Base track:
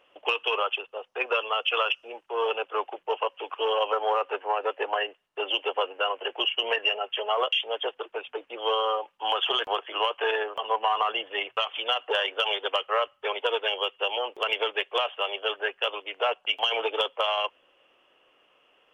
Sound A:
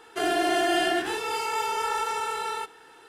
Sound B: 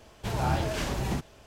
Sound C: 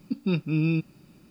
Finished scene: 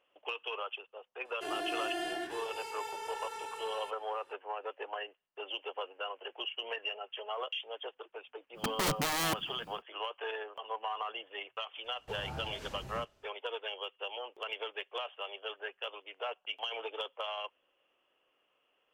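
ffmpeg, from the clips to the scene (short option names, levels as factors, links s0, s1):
-filter_complex "[0:a]volume=0.237[s0];[1:a]bandreject=f=1300:w=12[s1];[3:a]aeval=exprs='(mod(16.8*val(0)+1,2)-1)/16.8':c=same[s2];[s1]atrim=end=3.08,asetpts=PTS-STARTPTS,volume=0.224,afade=t=in:d=0.004:c=hsin,afade=t=out:st=3.076:d=0.004:c=hsin,adelay=1250[s3];[s2]atrim=end=1.3,asetpts=PTS-STARTPTS,volume=0.891,afade=t=in:d=0.1,afade=t=out:st=1.2:d=0.1,adelay=8530[s4];[2:a]atrim=end=1.46,asetpts=PTS-STARTPTS,volume=0.158,afade=t=in:d=0.004:c=hsin,afade=t=out:st=1.456:d=0.004:c=hsin,adelay=11840[s5];[s0][s3][s4][s5]amix=inputs=4:normalize=0"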